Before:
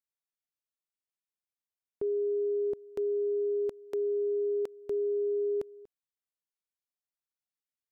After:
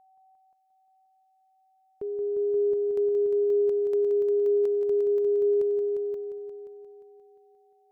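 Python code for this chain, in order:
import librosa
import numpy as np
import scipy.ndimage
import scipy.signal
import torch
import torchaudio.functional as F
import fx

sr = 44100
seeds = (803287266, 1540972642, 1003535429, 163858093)

y = x + 10.0 ** (-56.0 / 20.0) * np.sin(2.0 * np.pi * 760.0 * np.arange(len(x)) / sr)
y = fx.echo_heads(y, sr, ms=176, heads='all three', feedback_pct=41, wet_db=-7.0)
y = F.gain(torch.from_numpy(y), -2.0).numpy()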